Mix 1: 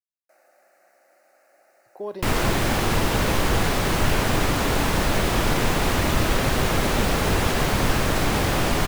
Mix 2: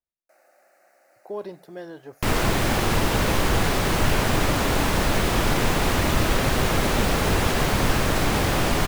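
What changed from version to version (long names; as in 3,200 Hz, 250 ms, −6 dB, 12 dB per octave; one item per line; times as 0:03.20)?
speech: entry −0.70 s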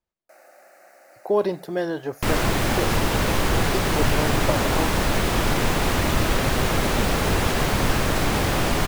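speech +12.0 dB
first sound +8.5 dB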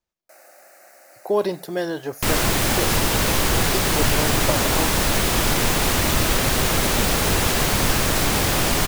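master: add high-shelf EQ 3,700 Hz +10 dB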